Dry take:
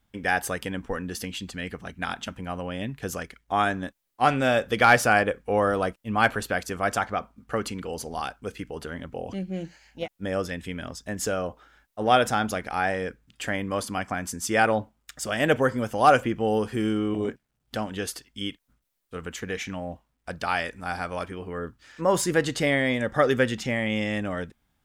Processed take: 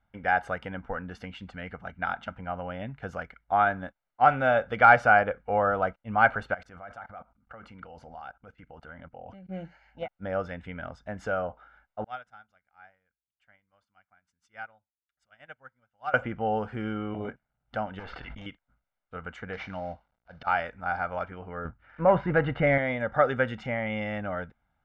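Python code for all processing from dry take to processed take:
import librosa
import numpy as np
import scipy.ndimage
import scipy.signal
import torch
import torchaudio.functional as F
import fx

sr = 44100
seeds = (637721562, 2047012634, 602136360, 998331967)

y = fx.chain(x, sr, fx.level_steps(step_db=21),
    fx.notch(hz=420.0, q=8.2), at=(6.54, 9.49))
y = fx.chain(y, sr, fx.tone_stack(knobs='5-5-5'),
    fx.upward_expand(threshold_db=-46.0, expansion=2.5), at=(12.04, 16.14))
y = fx.chain(y, sr, fx.lowpass(hz=3600.0, slope=24),
    fx.tube_stage(drive_db=35.0, bias=0.8),
    fx.env_flatten(amount_pct=100), at=(17.99, 18.46))
y = fx.chain(y, sr, fx.cvsd(bps=32000),
    fx.auto_swell(attack_ms=124.0),
    fx.peak_eq(hz=5000.0, db=4.0, octaves=1.3), at=(19.53, 20.47))
y = fx.chain(y, sr, fx.lowpass(hz=2800.0, slope=24),
    fx.low_shelf(hz=170.0, db=7.5),
    fx.leveller(passes=1), at=(21.65, 22.78))
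y = scipy.signal.sosfilt(scipy.signal.cheby1(2, 1.0, 1200.0, 'lowpass', fs=sr, output='sos'), y)
y = fx.tilt_shelf(y, sr, db=-5.5, hz=970.0)
y = y + 0.51 * np.pad(y, (int(1.4 * sr / 1000.0), 0))[:len(y)]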